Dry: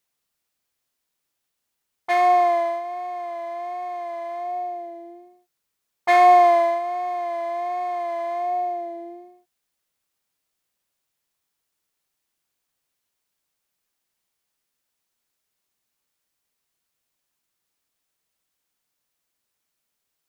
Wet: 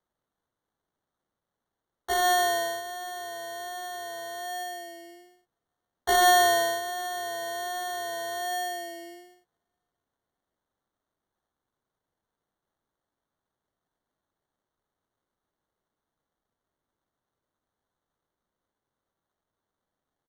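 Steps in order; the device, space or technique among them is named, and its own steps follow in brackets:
delay with a high-pass on its return 607 ms, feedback 30%, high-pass 4,300 Hz, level −17 dB
crushed at another speed (tape speed factor 1.25×; decimation without filtering 14×; tape speed factor 0.8×)
level −6.5 dB

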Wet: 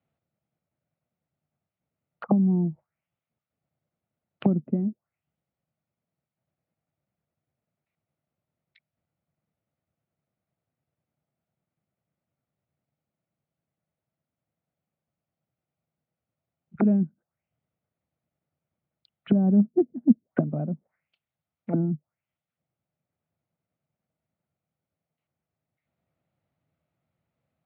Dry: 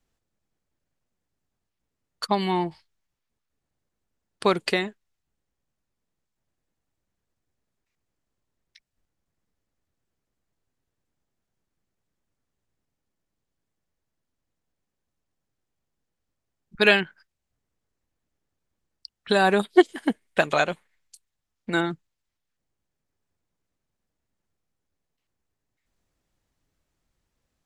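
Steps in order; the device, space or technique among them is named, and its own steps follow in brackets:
envelope filter bass rig (envelope-controlled low-pass 240–4,300 Hz down, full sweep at −24 dBFS; loudspeaker in its box 86–2,100 Hz, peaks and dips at 150 Hz +6 dB, 290 Hz −4 dB, 410 Hz −6 dB, 640 Hz +5 dB, 1,000 Hz −6 dB, 1,700 Hz −9 dB)

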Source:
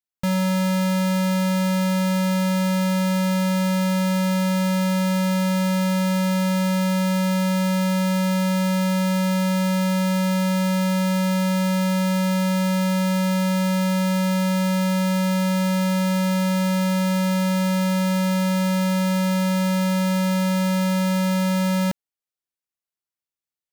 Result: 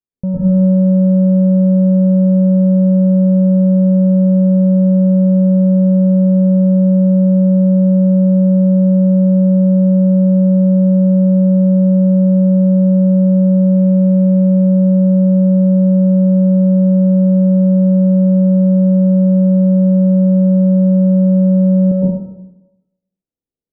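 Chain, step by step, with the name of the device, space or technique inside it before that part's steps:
next room (low-pass filter 510 Hz 24 dB per octave; convolution reverb RT60 0.95 s, pre-delay 105 ms, DRR −8 dB)
0:13.75–0:14.67: flat-topped bell 3,900 Hz +12.5 dB
level +5 dB

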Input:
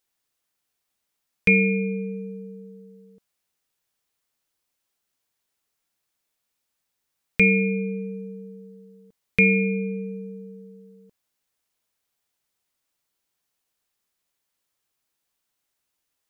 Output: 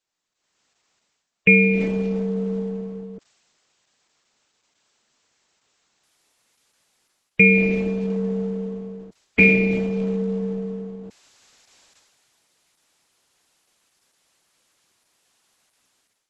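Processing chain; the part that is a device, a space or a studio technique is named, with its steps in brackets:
0:07.45–0:08.25: dynamic equaliser 1,500 Hz, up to +5 dB, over −41 dBFS, Q 2.6
noise-suppressed video call (high-pass filter 120 Hz 12 dB per octave; gate on every frequency bin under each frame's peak −30 dB strong; automatic gain control gain up to 17 dB; level −1 dB; Opus 12 kbit/s 48,000 Hz)

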